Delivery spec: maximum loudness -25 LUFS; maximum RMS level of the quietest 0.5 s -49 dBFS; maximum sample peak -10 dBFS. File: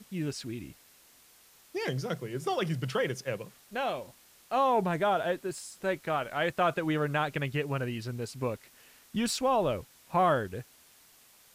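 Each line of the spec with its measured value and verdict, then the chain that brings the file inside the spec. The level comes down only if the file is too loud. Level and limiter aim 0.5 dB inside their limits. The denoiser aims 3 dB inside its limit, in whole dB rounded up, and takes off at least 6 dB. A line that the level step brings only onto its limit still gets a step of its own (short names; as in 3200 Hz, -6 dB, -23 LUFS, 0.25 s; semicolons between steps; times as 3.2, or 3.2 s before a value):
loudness -31.5 LUFS: OK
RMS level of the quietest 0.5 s -59 dBFS: OK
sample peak -16.0 dBFS: OK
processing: none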